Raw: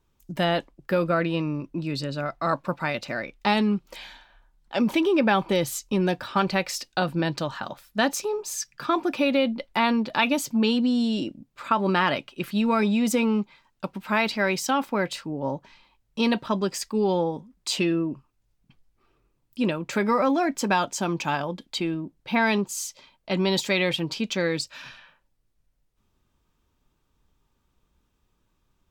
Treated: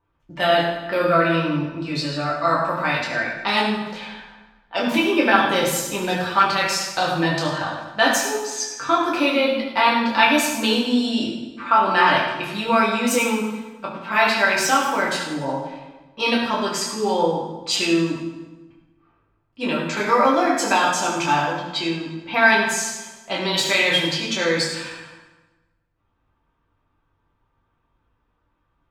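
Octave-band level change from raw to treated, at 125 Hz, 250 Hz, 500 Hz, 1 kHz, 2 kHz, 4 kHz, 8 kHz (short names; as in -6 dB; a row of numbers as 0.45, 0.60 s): +0.5, +1.0, +4.0, +7.5, +8.5, +7.5, +7.0 dB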